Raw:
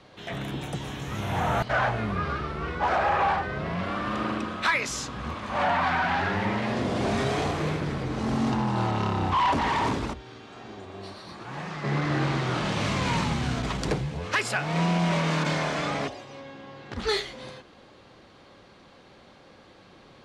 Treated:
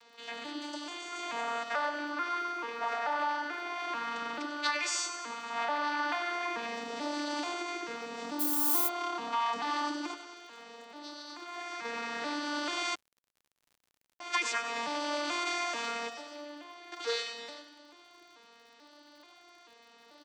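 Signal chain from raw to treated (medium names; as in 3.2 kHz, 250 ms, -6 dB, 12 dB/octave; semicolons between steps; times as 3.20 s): vocoder on a broken chord major triad, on A#3, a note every 437 ms; bass shelf 220 Hz -9.5 dB; thinning echo 96 ms, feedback 57%, high-pass 480 Hz, level -10.5 dB; 8.39–8.87 s: added noise blue -42 dBFS; compression 4:1, threshold -28 dBFS, peak gain reduction 7 dB; tilt EQ +4.5 dB/octave; 12.95–14.20 s: mute; comb 6.6 ms, depth 48%; crackle 71 per s -51 dBFS; trim -1.5 dB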